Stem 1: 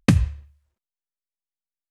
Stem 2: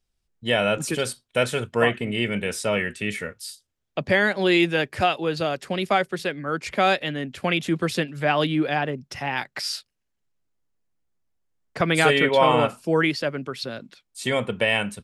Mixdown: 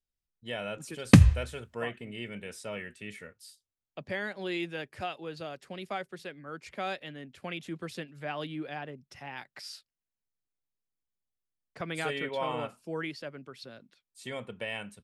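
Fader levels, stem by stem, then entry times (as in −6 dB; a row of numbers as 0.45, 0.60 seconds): +1.0, −15.0 decibels; 1.05, 0.00 seconds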